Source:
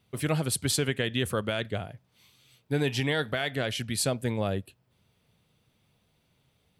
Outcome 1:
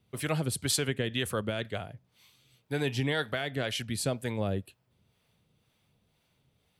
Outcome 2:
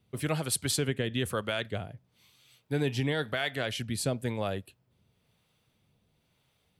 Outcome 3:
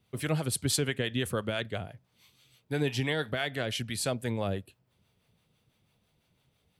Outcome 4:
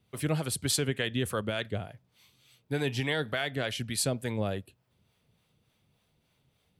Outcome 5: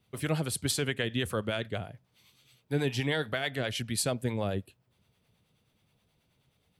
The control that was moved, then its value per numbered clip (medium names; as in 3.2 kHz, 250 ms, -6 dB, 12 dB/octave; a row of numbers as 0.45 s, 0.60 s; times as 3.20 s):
harmonic tremolo, rate: 2 Hz, 1 Hz, 6 Hz, 3.4 Hz, 9.4 Hz